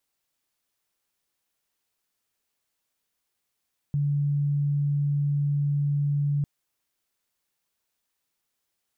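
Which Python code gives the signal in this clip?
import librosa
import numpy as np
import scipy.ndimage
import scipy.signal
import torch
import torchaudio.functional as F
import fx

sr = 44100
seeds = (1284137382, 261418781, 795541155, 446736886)

y = 10.0 ** (-21.5 / 20.0) * np.sin(2.0 * np.pi * (144.0 * (np.arange(round(2.5 * sr)) / sr)))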